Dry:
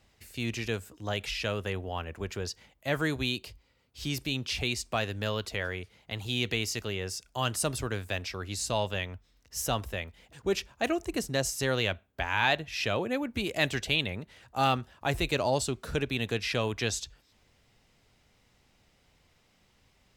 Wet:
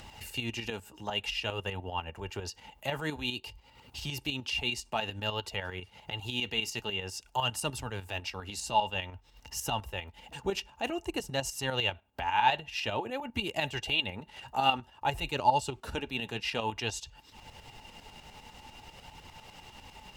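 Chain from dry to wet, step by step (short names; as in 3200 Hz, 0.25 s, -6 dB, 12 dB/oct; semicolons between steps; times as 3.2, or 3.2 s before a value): small resonant body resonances 870/2800 Hz, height 17 dB, ringing for 45 ms; in parallel at 0 dB: compressor, threshold -38 dBFS, peak gain reduction 23 dB; on the sum: tremolo saw up 10 Hz, depth 65%; upward compressor, threshold -32 dBFS; flange 0.52 Hz, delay 0.5 ms, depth 4.9 ms, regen -57%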